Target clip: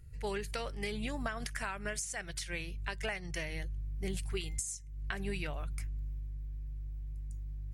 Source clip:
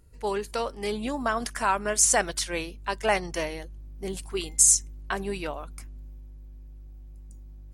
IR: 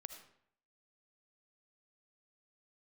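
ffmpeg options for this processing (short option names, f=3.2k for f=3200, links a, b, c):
-af "equalizer=f=125:t=o:w=1:g=8,equalizer=f=250:t=o:w=1:g=-11,equalizer=f=500:t=o:w=1:g=-6,equalizer=f=1k:t=o:w=1:g=-10,equalizer=f=2k:t=o:w=1:g=7,acompressor=threshold=-33dB:ratio=16,tiltshelf=f=970:g=3.5"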